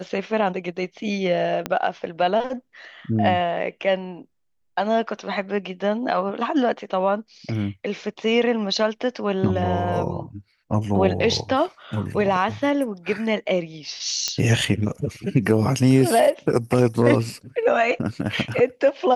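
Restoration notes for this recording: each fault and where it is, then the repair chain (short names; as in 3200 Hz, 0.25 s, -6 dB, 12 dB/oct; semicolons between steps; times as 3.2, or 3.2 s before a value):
1.66 pop -10 dBFS
14.28 pop -8 dBFS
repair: de-click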